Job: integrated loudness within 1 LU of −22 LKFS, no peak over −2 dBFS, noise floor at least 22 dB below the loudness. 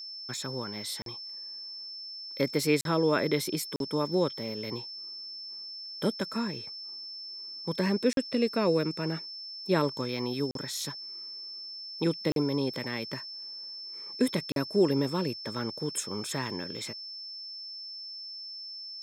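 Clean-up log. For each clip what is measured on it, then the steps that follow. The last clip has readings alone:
number of dropouts 7; longest dropout 42 ms; interfering tone 5,300 Hz; level of the tone −39 dBFS; integrated loudness −32.0 LKFS; sample peak −12.0 dBFS; target loudness −22.0 LKFS
→ repair the gap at 0:01.02/0:02.81/0:03.76/0:08.13/0:10.51/0:12.32/0:14.52, 42 ms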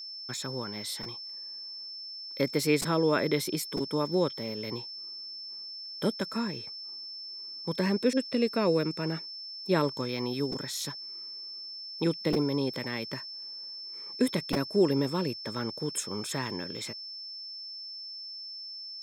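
number of dropouts 0; interfering tone 5,300 Hz; level of the tone −39 dBFS
→ notch filter 5,300 Hz, Q 30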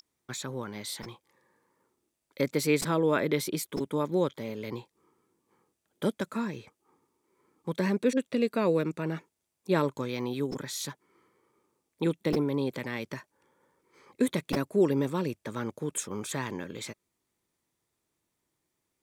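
interfering tone none found; integrated loudness −31.0 LKFS; sample peak −12.0 dBFS; target loudness −22.0 LKFS
→ level +9 dB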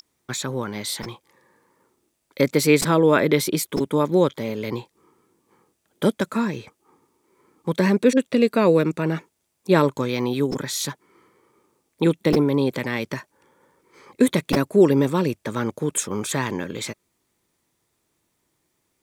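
integrated loudness −22.0 LKFS; sample peak −3.0 dBFS; background noise floor −73 dBFS

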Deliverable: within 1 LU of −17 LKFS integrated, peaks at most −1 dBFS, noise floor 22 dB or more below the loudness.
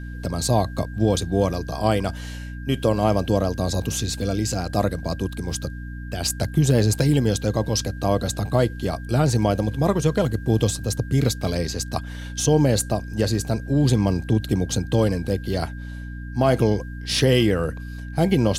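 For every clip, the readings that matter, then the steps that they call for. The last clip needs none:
mains hum 60 Hz; hum harmonics up to 300 Hz; level of the hum −31 dBFS; interfering tone 1,600 Hz; level of the tone −43 dBFS; integrated loudness −22.5 LKFS; sample peak −4.5 dBFS; target loudness −17.0 LKFS
→ hum removal 60 Hz, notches 5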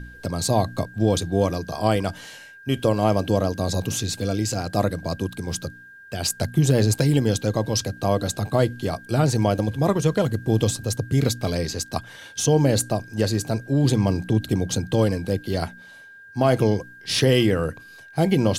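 mains hum none found; interfering tone 1,600 Hz; level of the tone −43 dBFS
→ notch filter 1,600 Hz, Q 30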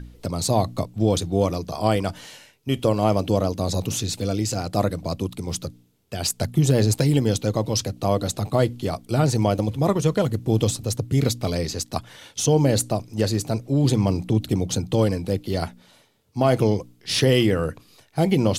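interfering tone none found; integrated loudness −23.0 LKFS; sample peak −5.0 dBFS; target loudness −17.0 LKFS
→ level +6 dB
brickwall limiter −1 dBFS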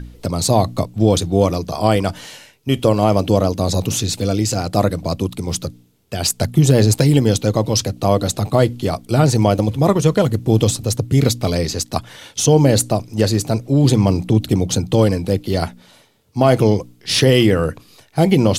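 integrated loudness −17.0 LKFS; sample peak −1.0 dBFS; background noise floor −51 dBFS

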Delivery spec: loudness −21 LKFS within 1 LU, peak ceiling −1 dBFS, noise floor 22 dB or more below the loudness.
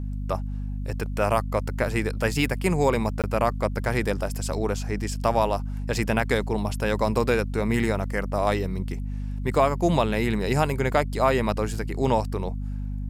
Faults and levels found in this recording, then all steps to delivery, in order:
number of dropouts 1; longest dropout 17 ms; mains hum 50 Hz; hum harmonics up to 250 Hz; level of the hum −27 dBFS; integrated loudness −25.5 LKFS; sample peak −8.0 dBFS; target loudness −21.0 LKFS
→ repair the gap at 0:03.22, 17 ms
mains-hum notches 50/100/150/200/250 Hz
level +4.5 dB

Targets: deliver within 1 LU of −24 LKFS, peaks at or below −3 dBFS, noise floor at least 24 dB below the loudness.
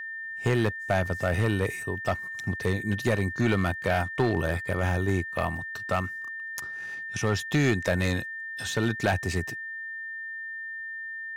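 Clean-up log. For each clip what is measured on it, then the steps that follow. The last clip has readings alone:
share of clipped samples 0.8%; peaks flattened at −17.0 dBFS; interfering tone 1,800 Hz; level of the tone −34 dBFS; integrated loudness −28.5 LKFS; sample peak −17.0 dBFS; target loudness −24.0 LKFS
→ clipped peaks rebuilt −17 dBFS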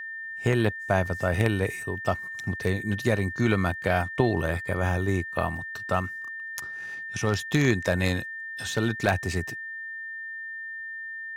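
share of clipped samples 0.0%; interfering tone 1,800 Hz; level of the tone −34 dBFS
→ notch filter 1,800 Hz, Q 30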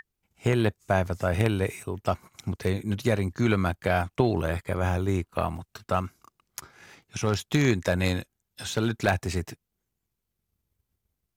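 interfering tone none found; integrated loudness −27.5 LKFS; sample peak −7.5 dBFS; target loudness −24.0 LKFS
→ level +3.5 dB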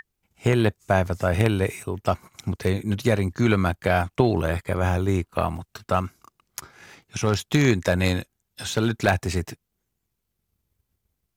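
integrated loudness −24.0 LKFS; sample peak −4.0 dBFS; background noise floor −79 dBFS

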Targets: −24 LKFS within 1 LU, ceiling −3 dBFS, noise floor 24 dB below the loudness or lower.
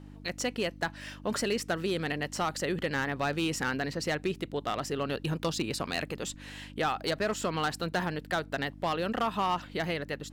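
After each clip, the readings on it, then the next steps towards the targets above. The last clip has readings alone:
share of clipped samples 1.0%; peaks flattened at −22.5 dBFS; mains hum 50 Hz; hum harmonics up to 300 Hz; level of the hum −46 dBFS; integrated loudness −32.0 LKFS; sample peak −22.5 dBFS; target loudness −24.0 LKFS
→ clipped peaks rebuilt −22.5 dBFS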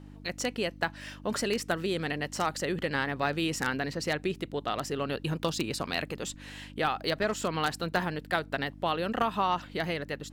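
share of clipped samples 0.0%; mains hum 50 Hz; hum harmonics up to 300 Hz; level of the hum −46 dBFS
→ hum removal 50 Hz, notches 6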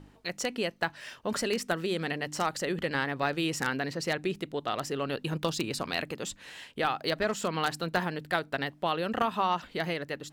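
mains hum none found; integrated loudness −31.5 LKFS; sample peak −13.0 dBFS; target loudness −24.0 LKFS
→ level +7.5 dB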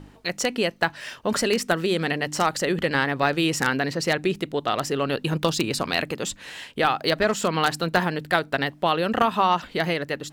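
integrated loudness −24.0 LKFS; sample peak −5.5 dBFS; background noise floor −49 dBFS

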